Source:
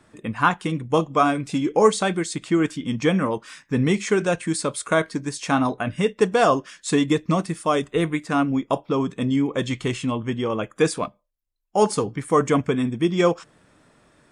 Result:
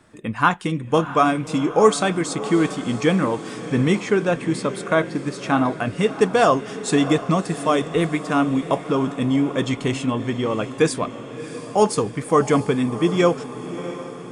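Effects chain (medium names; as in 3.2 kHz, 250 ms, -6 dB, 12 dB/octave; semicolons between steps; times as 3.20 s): 4.00–5.72 s: peaking EQ 8.9 kHz -10.5 dB 1.6 oct; echo that smears into a reverb 671 ms, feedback 59%, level -13 dB; trim +1.5 dB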